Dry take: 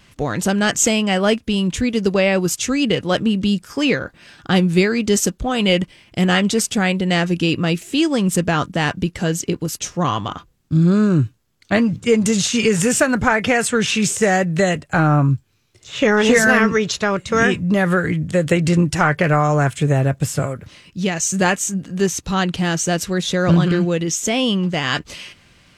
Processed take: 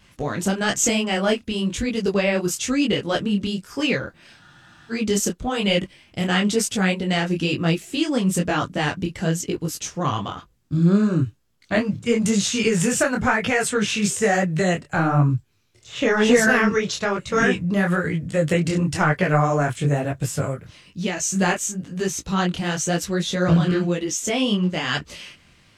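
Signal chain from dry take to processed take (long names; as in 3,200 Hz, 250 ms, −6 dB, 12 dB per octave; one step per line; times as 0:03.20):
frozen spectrum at 0:04.41, 0.50 s
micro pitch shift up and down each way 36 cents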